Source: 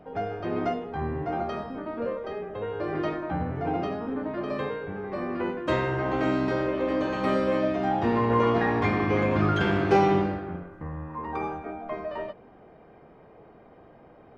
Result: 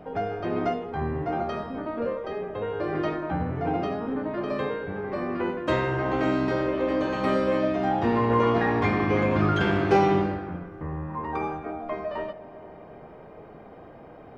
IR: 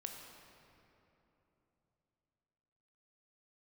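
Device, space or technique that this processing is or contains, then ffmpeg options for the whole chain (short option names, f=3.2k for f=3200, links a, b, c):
ducked reverb: -filter_complex "[0:a]asplit=3[a][b][c];[1:a]atrim=start_sample=2205[d];[b][d]afir=irnorm=-1:irlink=0[e];[c]apad=whole_len=633749[f];[e][f]sidechaincompress=threshold=-38dB:ratio=8:attack=16:release=1070,volume=3dB[g];[a][g]amix=inputs=2:normalize=0"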